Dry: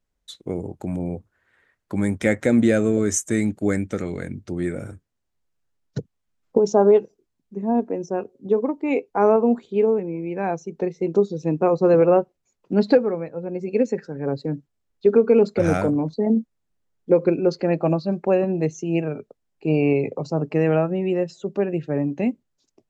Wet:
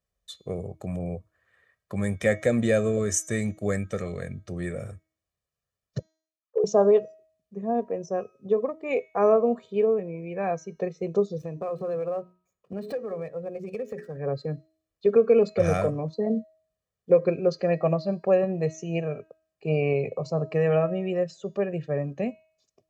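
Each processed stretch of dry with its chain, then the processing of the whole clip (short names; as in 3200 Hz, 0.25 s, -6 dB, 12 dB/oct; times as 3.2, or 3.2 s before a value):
5.99–6.64 sine-wave speech + AM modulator 67 Hz, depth 55%
11.38–14.17 median filter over 9 samples + notches 60/120/180/240/300/360/420 Hz + compressor, threshold -25 dBFS
whole clip: HPF 48 Hz; comb 1.7 ms, depth 70%; de-hum 317.9 Hz, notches 22; gain -4.5 dB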